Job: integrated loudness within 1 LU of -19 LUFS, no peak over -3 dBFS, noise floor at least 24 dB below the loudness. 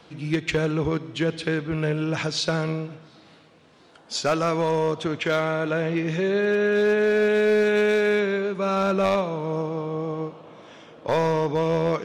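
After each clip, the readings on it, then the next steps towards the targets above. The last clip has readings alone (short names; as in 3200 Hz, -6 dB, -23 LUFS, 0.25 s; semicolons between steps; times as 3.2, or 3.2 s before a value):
clipped 1.2%; flat tops at -15.5 dBFS; loudness -23.5 LUFS; peak -15.5 dBFS; loudness target -19.0 LUFS
-> clip repair -15.5 dBFS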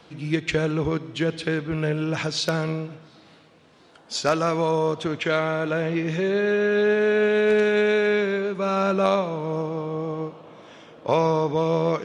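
clipped 0.0%; loudness -23.5 LUFS; peak -6.5 dBFS; loudness target -19.0 LUFS
-> gain +4.5 dB; limiter -3 dBFS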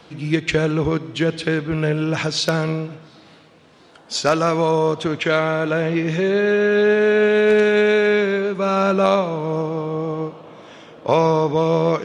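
loudness -19.0 LUFS; peak -3.0 dBFS; noise floor -49 dBFS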